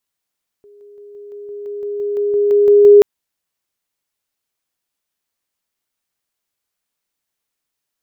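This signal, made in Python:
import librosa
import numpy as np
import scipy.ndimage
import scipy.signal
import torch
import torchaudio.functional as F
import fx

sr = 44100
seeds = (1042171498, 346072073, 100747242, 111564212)

y = fx.level_ladder(sr, hz=410.0, from_db=-41.5, step_db=3.0, steps=14, dwell_s=0.17, gap_s=0.0)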